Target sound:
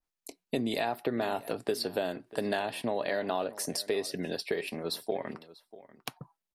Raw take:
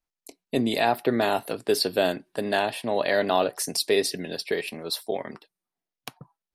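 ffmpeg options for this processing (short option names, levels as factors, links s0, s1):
-filter_complex "[0:a]acompressor=threshold=0.0447:ratio=6,asplit=2[s0][s1];[s1]adelay=641.4,volume=0.126,highshelf=f=4000:g=-14.4[s2];[s0][s2]amix=inputs=2:normalize=0,adynamicequalizer=threshold=0.00447:dfrequency=2000:dqfactor=0.7:tfrequency=2000:tqfactor=0.7:attack=5:release=100:ratio=0.375:range=2:mode=cutabove:tftype=highshelf"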